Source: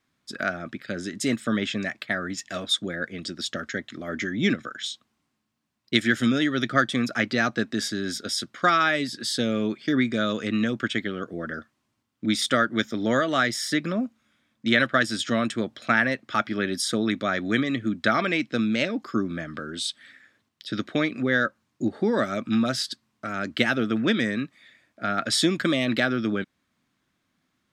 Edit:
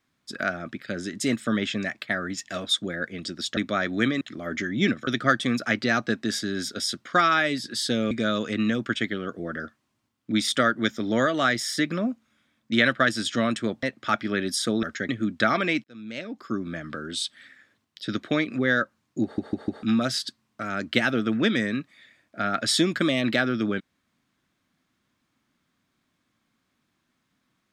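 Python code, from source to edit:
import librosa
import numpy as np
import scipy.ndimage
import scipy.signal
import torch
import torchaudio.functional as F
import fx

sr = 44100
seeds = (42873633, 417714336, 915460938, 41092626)

y = fx.edit(x, sr, fx.swap(start_s=3.57, length_s=0.26, other_s=17.09, other_length_s=0.64),
    fx.cut(start_s=4.69, length_s=1.87),
    fx.cut(start_s=9.6, length_s=0.45),
    fx.cut(start_s=15.77, length_s=0.32),
    fx.fade_in_span(start_s=18.48, length_s=1.08),
    fx.stutter_over(start_s=21.87, slice_s=0.15, count=4), tone=tone)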